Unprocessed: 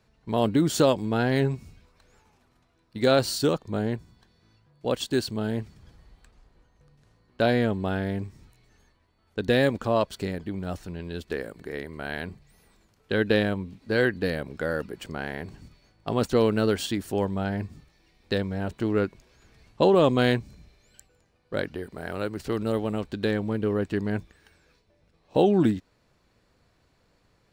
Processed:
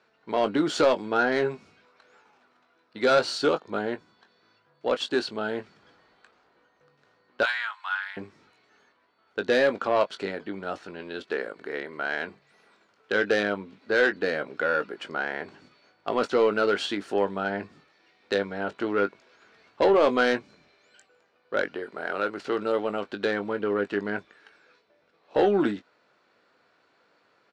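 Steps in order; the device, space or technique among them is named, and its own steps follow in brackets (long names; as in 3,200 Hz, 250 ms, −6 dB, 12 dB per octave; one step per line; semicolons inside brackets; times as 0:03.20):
0:07.43–0:08.17: Butterworth high-pass 970 Hz 48 dB per octave
intercom (band-pass filter 370–4,100 Hz; parametric band 1,400 Hz +7.5 dB 0.25 octaves; soft clipping −17 dBFS, distortion −14 dB; double-tracking delay 20 ms −10 dB)
level +3.5 dB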